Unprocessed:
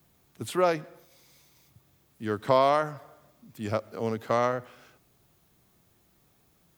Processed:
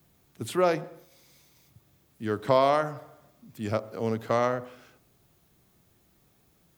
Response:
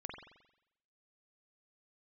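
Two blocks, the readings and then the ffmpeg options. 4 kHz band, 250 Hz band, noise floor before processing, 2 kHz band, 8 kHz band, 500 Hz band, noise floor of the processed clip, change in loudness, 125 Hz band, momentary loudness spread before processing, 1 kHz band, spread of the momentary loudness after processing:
0.0 dB, +1.5 dB, −66 dBFS, 0.0 dB, can't be measured, +0.5 dB, −65 dBFS, 0.0 dB, +1.5 dB, 16 LU, −0.5 dB, 17 LU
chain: -filter_complex "[0:a]asplit=2[link_01][link_02];[1:a]atrim=start_sample=2205,afade=type=out:start_time=0.31:duration=0.01,atrim=end_sample=14112,lowpass=frequency=1100:width=0.5412,lowpass=frequency=1100:width=1.3066[link_03];[link_02][link_03]afir=irnorm=-1:irlink=0,volume=-9.5dB[link_04];[link_01][link_04]amix=inputs=2:normalize=0"

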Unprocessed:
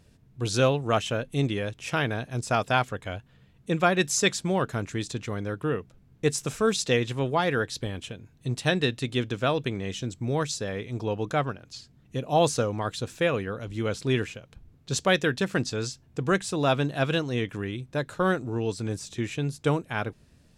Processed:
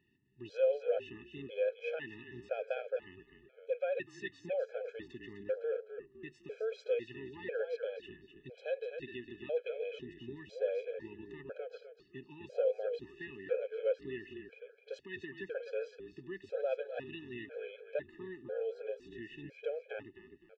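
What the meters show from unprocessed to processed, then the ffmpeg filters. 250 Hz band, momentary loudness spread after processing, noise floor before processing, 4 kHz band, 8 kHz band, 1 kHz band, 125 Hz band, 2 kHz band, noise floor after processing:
−20.5 dB, 14 LU, −59 dBFS, −22.5 dB, below −35 dB, −23.5 dB, −28.0 dB, −16.5 dB, −65 dBFS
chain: -filter_complex "[0:a]lowpass=3500,equalizer=frequency=2000:width=3.9:gain=-5,asplit=2[link_01][link_02];[link_02]acompressor=threshold=-36dB:ratio=6,volume=0dB[link_03];[link_01][link_03]amix=inputs=2:normalize=0,alimiter=limit=-18dB:level=0:latency=1:release=137,asplit=3[link_04][link_05][link_06];[link_04]bandpass=frequency=530:width_type=q:width=8,volume=0dB[link_07];[link_05]bandpass=frequency=1840:width_type=q:width=8,volume=-6dB[link_08];[link_06]bandpass=frequency=2480:width_type=q:width=8,volume=-9dB[link_09];[link_07][link_08][link_09]amix=inputs=3:normalize=0,asplit=2[link_10][link_11];[link_11]asplit=4[link_12][link_13][link_14][link_15];[link_12]adelay=254,afreqshift=-38,volume=-8dB[link_16];[link_13]adelay=508,afreqshift=-76,volume=-18.2dB[link_17];[link_14]adelay=762,afreqshift=-114,volume=-28.3dB[link_18];[link_15]adelay=1016,afreqshift=-152,volume=-38.5dB[link_19];[link_16][link_17][link_18][link_19]amix=inputs=4:normalize=0[link_20];[link_10][link_20]amix=inputs=2:normalize=0,afftfilt=real='re*gt(sin(2*PI*1*pts/sr)*(1-2*mod(floor(b*sr/1024/430),2)),0)':imag='im*gt(sin(2*PI*1*pts/sr)*(1-2*mod(floor(b*sr/1024/430),2)),0)':win_size=1024:overlap=0.75,volume=2dB"

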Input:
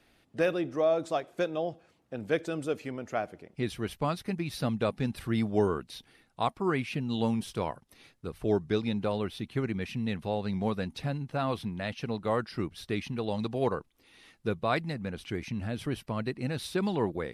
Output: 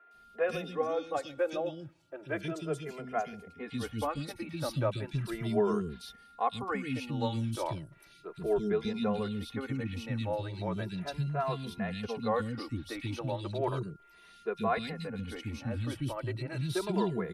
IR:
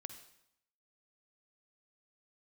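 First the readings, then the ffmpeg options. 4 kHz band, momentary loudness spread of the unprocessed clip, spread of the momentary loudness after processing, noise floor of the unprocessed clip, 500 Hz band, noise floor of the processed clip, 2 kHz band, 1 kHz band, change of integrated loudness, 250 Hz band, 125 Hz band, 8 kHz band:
−2.5 dB, 8 LU, 9 LU, −68 dBFS, −2.5 dB, −58 dBFS, −3.0 dB, −1.0 dB, −2.5 dB, −3.5 dB, −1.0 dB, −1.0 dB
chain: -filter_complex "[0:a]aeval=exprs='val(0)+0.00141*sin(2*PI*1400*n/s)':channel_layout=same,acrossover=split=310|2400[link_01][link_02][link_03];[link_03]adelay=110[link_04];[link_01]adelay=140[link_05];[link_05][link_02][link_04]amix=inputs=3:normalize=0,asplit=2[link_06][link_07];[link_07]adelay=2.5,afreqshift=0.35[link_08];[link_06][link_08]amix=inputs=2:normalize=1,volume=2dB"

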